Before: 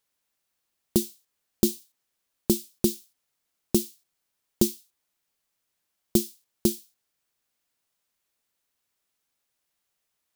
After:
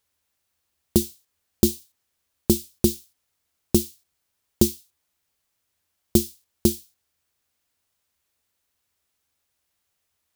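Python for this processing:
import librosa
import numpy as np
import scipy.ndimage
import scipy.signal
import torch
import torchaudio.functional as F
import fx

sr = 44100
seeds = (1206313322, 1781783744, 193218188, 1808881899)

y = fx.peak_eq(x, sr, hz=79.0, db=14.5, octaves=0.47)
y = y * librosa.db_to_amplitude(3.0)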